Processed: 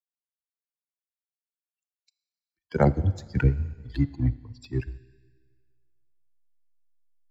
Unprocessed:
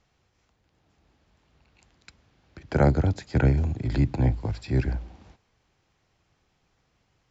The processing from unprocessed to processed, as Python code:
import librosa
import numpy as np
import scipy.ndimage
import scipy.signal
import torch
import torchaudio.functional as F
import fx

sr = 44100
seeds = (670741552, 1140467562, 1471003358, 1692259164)

p1 = fx.bin_expand(x, sr, power=3.0)
p2 = fx.rev_schroeder(p1, sr, rt60_s=1.7, comb_ms=25, drr_db=15.5)
p3 = fx.backlash(p2, sr, play_db=-36.0)
y = p2 + (p3 * librosa.db_to_amplitude(-5.0))